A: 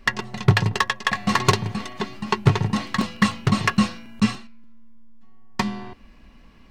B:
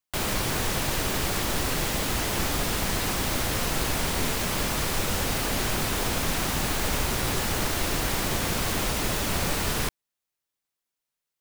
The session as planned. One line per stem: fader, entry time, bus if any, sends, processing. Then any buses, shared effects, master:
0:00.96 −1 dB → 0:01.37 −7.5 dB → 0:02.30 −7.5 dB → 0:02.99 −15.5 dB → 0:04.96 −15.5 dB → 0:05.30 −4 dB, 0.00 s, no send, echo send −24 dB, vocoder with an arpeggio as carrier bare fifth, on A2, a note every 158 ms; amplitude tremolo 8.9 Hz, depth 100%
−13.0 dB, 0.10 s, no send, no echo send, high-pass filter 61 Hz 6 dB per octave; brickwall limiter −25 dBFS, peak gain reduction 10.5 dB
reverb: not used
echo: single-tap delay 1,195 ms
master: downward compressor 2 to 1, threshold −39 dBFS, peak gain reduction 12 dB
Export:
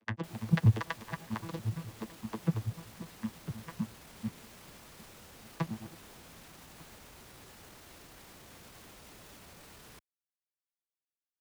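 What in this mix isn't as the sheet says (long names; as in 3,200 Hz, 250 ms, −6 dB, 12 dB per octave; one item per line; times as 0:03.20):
stem B −13.0 dB → −19.0 dB
master: missing downward compressor 2 to 1, threshold −39 dBFS, peak gain reduction 12 dB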